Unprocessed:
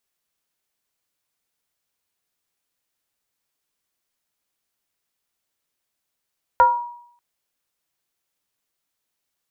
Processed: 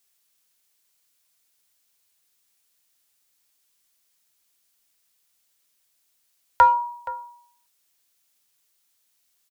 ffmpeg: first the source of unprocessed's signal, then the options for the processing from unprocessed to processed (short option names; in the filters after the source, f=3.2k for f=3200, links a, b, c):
-f lavfi -i "aevalsrc='0.422*pow(10,-3*t/0.67)*sin(2*PI*958*t+0.65*pow(10,-3*t/0.5)*sin(2*PI*0.46*958*t))':d=0.59:s=44100"
-filter_complex "[0:a]highshelf=f=2.3k:g=11.5,asplit=2[a][b];[b]adelay=472.3,volume=-17dB,highshelf=f=4k:g=-10.6[c];[a][c]amix=inputs=2:normalize=0,acrossover=split=260|580[d][e][f];[e]asoftclip=type=hard:threshold=-36.5dB[g];[d][g][f]amix=inputs=3:normalize=0"